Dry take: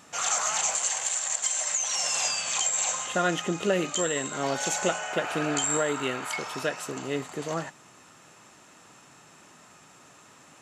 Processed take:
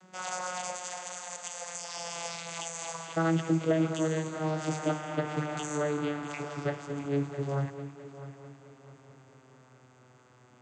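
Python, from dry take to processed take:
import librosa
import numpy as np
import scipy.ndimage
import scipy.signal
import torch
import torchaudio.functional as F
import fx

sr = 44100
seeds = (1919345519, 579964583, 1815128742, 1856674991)

p1 = fx.vocoder_glide(x, sr, note=54, semitones=-7)
p2 = fx.hum_notches(p1, sr, base_hz=50, count=9)
p3 = p2 + fx.echo_heads(p2, sr, ms=219, heads='first and third', feedback_pct=51, wet_db=-14.5, dry=0)
y = p3 * 10.0 ** (-2.5 / 20.0)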